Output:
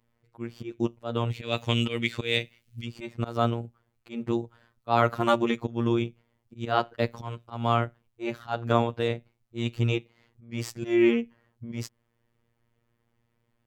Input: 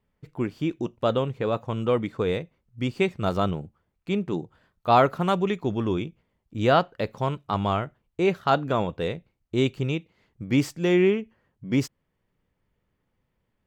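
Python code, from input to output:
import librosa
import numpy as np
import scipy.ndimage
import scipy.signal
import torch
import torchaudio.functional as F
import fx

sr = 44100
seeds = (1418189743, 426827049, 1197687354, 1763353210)

y = fx.high_shelf_res(x, sr, hz=1700.0, db=13.0, q=1.5, at=(1.3, 2.84), fade=0.02)
y = fx.auto_swell(y, sr, attack_ms=230.0)
y = fx.robotise(y, sr, hz=117.0)
y = F.gain(torch.from_numpy(y), 4.0).numpy()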